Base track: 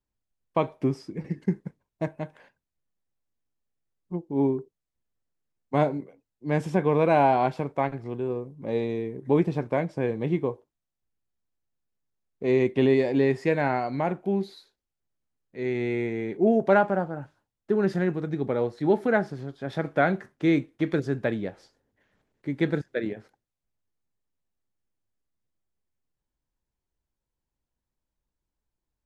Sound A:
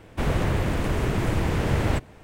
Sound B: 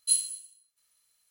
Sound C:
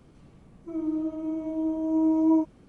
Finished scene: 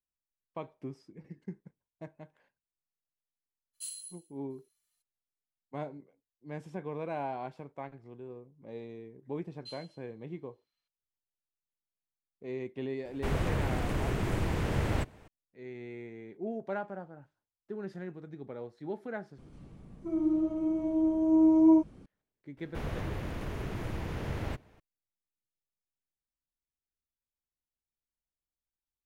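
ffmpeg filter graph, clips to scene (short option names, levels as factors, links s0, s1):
-filter_complex "[2:a]asplit=2[s0][s1];[1:a]asplit=2[s2][s3];[0:a]volume=0.158[s4];[s0]asplit=2[s5][s6];[s6]adelay=3,afreqshift=1.9[s7];[s5][s7]amix=inputs=2:normalize=1[s8];[s1]lowpass=f=4500:w=0.5412,lowpass=f=4500:w=1.3066[s9];[3:a]lowshelf=f=360:g=5.5[s10];[s3]equalizer=f=8000:t=o:w=0.23:g=-8.5[s11];[s4]asplit=2[s12][s13];[s12]atrim=end=19.384[s14];[s10]atrim=end=2.68,asetpts=PTS-STARTPTS,volume=0.75[s15];[s13]atrim=start=22.056[s16];[s8]atrim=end=1.3,asetpts=PTS-STARTPTS,volume=0.473,afade=t=in:d=0.02,afade=t=out:st=1.28:d=0.02,adelay=164493S[s17];[s9]atrim=end=1.3,asetpts=PTS-STARTPTS,volume=0.316,afade=t=in:d=0.004:c=hsin,afade=t=out:st=1.296:d=0.004:c=hsin,adelay=9580[s18];[s2]atrim=end=2.23,asetpts=PTS-STARTPTS,volume=0.447,afade=t=in:d=0.004:c=hsin,afade=t=out:st=2.226:d=0.004:c=hsin,adelay=13050[s19];[s11]atrim=end=2.23,asetpts=PTS-STARTPTS,volume=0.237,afade=t=in:d=0.004:c=hsin,afade=t=out:st=2.226:d=0.004:c=hsin,adelay=22570[s20];[s14][s15]acrossfade=d=0.004:c1=hsin:c2=hsin[s21];[s21][s16]acrossfade=d=0.004:c1=hsin:c2=hsin[s22];[s22][s17][s18][s19][s20]amix=inputs=5:normalize=0"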